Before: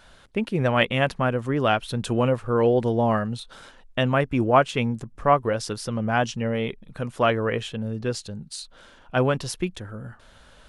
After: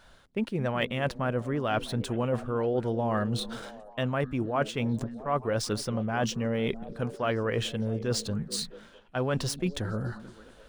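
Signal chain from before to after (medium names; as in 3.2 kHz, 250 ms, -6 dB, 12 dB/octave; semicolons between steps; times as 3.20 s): median filter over 3 samples; reverse; compression 6:1, threshold -31 dBFS, peak gain reduction 18 dB; reverse; gate -45 dBFS, range -9 dB; peaking EQ 2.6 kHz -2.5 dB; repeats whose band climbs or falls 219 ms, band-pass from 220 Hz, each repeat 0.7 oct, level -10 dB; trim +5 dB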